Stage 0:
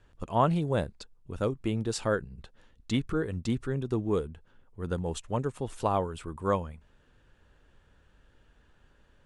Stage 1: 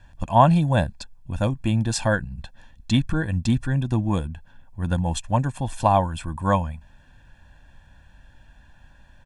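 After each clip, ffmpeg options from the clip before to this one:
-af "aecho=1:1:1.2:0.94,volume=6dB"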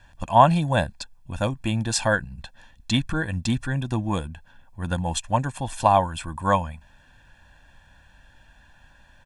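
-af "lowshelf=f=450:g=-7.5,volume=3dB"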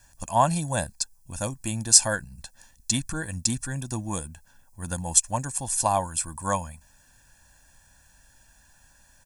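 -af "aexciter=amount=10.9:drive=1.9:freq=4.9k,volume=-6dB"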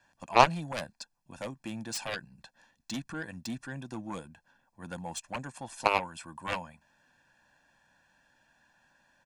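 -filter_complex "[0:a]acrossover=split=150 4000:gain=0.0794 1 0.0794[a][b][c];[a][b][c]amix=inputs=3:normalize=0,aeval=exprs='0.447*(cos(1*acos(clip(val(0)/0.447,-1,1)))-cos(1*PI/2))+0.1*(cos(3*acos(clip(val(0)/0.447,-1,1)))-cos(3*PI/2))+0.0501*(cos(7*acos(clip(val(0)/0.447,-1,1)))-cos(7*PI/2))':c=same,volume=3.5dB"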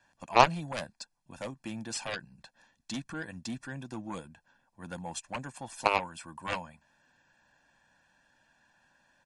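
-ar 48000 -c:a libmp3lame -b:a 48k

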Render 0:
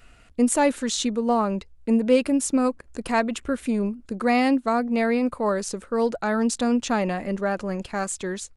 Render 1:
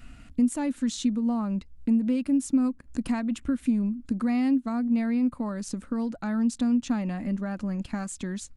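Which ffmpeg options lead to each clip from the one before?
-af "acompressor=threshold=-37dB:ratio=2.5,lowshelf=f=330:t=q:w=3:g=6.5"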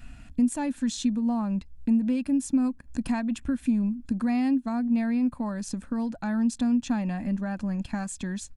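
-af "aecho=1:1:1.2:0.36"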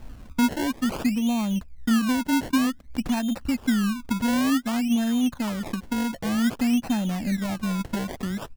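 -filter_complex "[0:a]asplit=2[a][b];[b]asoftclip=type=tanh:threshold=-26.5dB,volume=-6.5dB[c];[a][c]amix=inputs=2:normalize=0,acrusher=samples=25:mix=1:aa=0.000001:lfo=1:lforange=25:lforate=0.54"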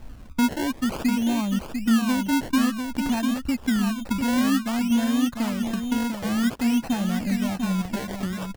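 -af "aecho=1:1:697:0.473"

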